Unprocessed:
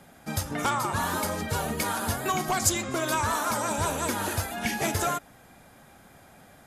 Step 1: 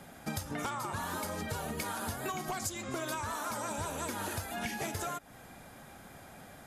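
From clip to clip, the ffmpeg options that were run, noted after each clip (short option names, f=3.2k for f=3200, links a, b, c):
-af "acompressor=threshold=-35dB:ratio=12,volume=1.5dB"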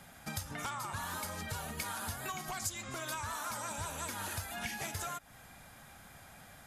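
-af "equalizer=f=360:t=o:w=2:g=-10"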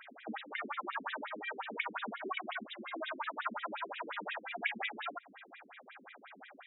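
-af "afftfilt=real='re*between(b*sr/1024,280*pow(2800/280,0.5+0.5*sin(2*PI*5.6*pts/sr))/1.41,280*pow(2800/280,0.5+0.5*sin(2*PI*5.6*pts/sr))*1.41)':imag='im*between(b*sr/1024,280*pow(2800/280,0.5+0.5*sin(2*PI*5.6*pts/sr))/1.41,280*pow(2800/280,0.5+0.5*sin(2*PI*5.6*pts/sr))*1.41)':win_size=1024:overlap=0.75,volume=9dB"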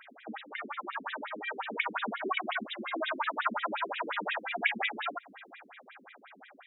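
-af "dynaudnorm=f=240:g=13:m=7dB"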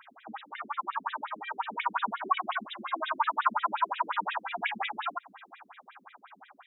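-af "equalizer=f=125:t=o:w=1:g=8,equalizer=f=250:t=o:w=1:g=-5,equalizer=f=500:t=o:w=1:g=-12,equalizer=f=1k:t=o:w=1:g=12,equalizer=f=2k:t=o:w=1:g=-7"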